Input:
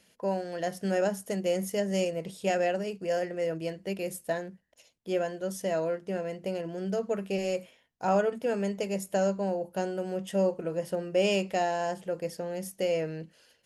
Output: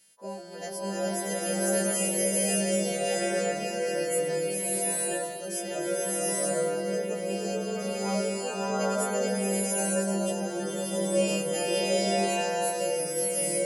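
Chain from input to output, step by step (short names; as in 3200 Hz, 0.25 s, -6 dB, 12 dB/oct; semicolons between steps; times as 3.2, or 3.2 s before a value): frequency quantiser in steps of 2 st; high shelf 9000 Hz +10 dB; bloom reverb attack 0.83 s, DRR -8.5 dB; gain -8 dB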